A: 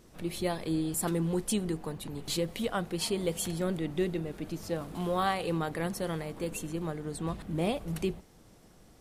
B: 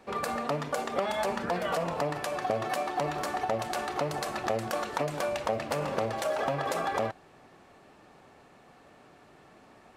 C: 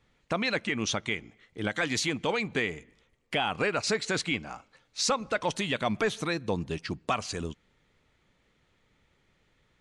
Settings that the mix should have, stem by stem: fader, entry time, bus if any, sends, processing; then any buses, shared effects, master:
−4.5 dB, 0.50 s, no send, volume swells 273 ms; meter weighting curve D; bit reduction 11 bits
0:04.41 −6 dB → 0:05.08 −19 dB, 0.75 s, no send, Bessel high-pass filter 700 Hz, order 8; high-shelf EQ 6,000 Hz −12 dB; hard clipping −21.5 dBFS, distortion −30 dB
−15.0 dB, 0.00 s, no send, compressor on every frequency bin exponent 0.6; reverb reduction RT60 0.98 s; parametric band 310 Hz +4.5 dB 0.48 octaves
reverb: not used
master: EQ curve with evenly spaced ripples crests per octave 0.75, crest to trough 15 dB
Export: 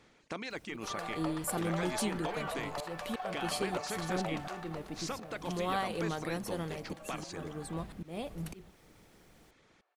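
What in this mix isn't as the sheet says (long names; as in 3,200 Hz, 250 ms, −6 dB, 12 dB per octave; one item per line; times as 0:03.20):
stem A: missing meter weighting curve D
master: missing EQ curve with evenly spaced ripples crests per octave 0.75, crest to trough 15 dB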